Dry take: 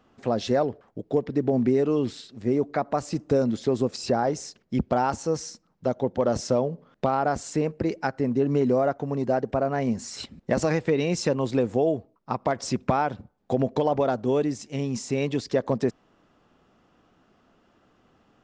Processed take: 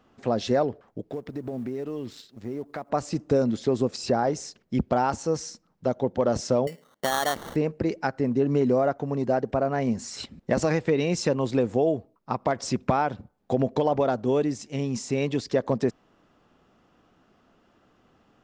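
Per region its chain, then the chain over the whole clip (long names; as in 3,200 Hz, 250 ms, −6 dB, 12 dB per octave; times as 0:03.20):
0:01.10–0:02.90: mu-law and A-law mismatch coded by A + downward compressor 2.5 to 1, threshold −33 dBFS
0:06.67–0:07.56: high-pass filter 450 Hz 6 dB per octave + sample-rate reduction 2,500 Hz
whole clip: no processing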